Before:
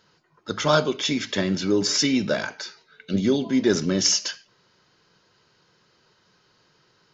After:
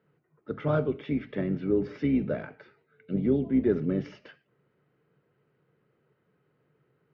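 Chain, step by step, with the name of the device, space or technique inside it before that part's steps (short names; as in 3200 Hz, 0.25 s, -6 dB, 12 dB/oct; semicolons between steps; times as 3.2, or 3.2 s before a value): sub-octave bass pedal (octaver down 2 oct, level -4 dB; speaker cabinet 81–2100 Hz, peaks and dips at 82 Hz -5 dB, 140 Hz +10 dB, 270 Hz +5 dB, 440 Hz +6 dB, 980 Hz -9 dB, 1600 Hz -6 dB); gain -8 dB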